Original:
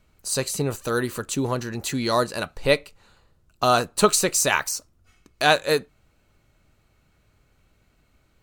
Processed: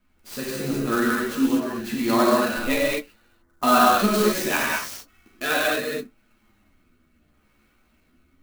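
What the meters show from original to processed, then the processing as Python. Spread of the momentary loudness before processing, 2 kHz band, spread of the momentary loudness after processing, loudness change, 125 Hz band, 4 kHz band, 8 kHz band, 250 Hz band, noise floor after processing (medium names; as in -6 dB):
9 LU, +1.5 dB, 14 LU, +1.0 dB, -5.0 dB, -2.5 dB, -7.0 dB, +6.5 dB, -64 dBFS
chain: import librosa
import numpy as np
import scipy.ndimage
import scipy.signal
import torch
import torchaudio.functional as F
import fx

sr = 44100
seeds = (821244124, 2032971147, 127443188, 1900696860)

y = fx.graphic_eq(x, sr, hz=(125, 250, 500, 4000, 8000), db=(-11, 9, -7, -3, -9))
y = fx.rotary(y, sr, hz=0.75)
y = fx.low_shelf(y, sr, hz=340.0, db=-5.5)
y = fx.rev_gated(y, sr, seeds[0], gate_ms=270, shape='flat', drr_db=-6.0)
y = fx.spec_erase(y, sr, start_s=3.42, length_s=0.21, low_hz=2200.0, high_hz=5700.0)
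y = fx.chorus_voices(y, sr, voices=2, hz=0.33, base_ms=11, depth_ms=2.9, mix_pct=45)
y = fx.clock_jitter(y, sr, seeds[1], jitter_ms=0.028)
y = y * 10.0 ** (3.0 / 20.0)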